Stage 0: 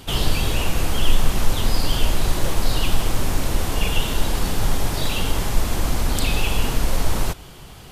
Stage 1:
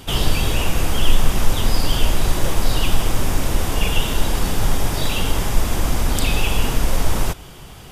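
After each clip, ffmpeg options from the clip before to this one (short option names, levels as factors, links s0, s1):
-af "bandreject=f=4200:w=12,volume=1.26"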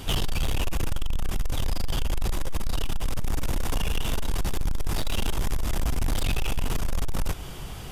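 -af "lowshelf=f=84:g=5.5,alimiter=limit=0.447:level=0:latency=1:release=243,asoftclip=type=tanh:threshold=0.1"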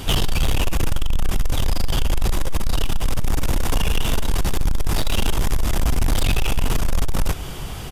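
-af "aecho=1:1:65|130|195:0.0841|0.0404|0.0194,volume=2.11"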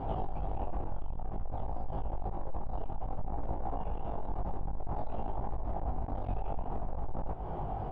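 -af "acompressor=threshold=0.0562:ratio=12,flanger=delay=18:depth=3.1:speed=0.56,lowpass=f=780:t=q:w=4.2,volume=0.708"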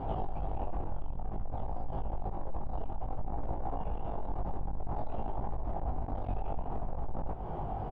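-filter_complex "[0:a]asplit=6[s0][s1][s2][s3][s4][s5];[s1]adelay=200,afreqshift=-73,volume=0.0794[s6];[s2]adelay=400,afreqshift=-146,volume=0.0501[s7];[s3]adelay=600,afreqshift=-219,volume=0.0316[s8];[s4]adelay=800,afreqshift=-292,volume=0.02[s9];[s5]adelay=1000,afreqshift=-365,volume=0.0124[s10];[s0][s6][s7][s8][s9][s10]amix=inputs=6:normalize=0"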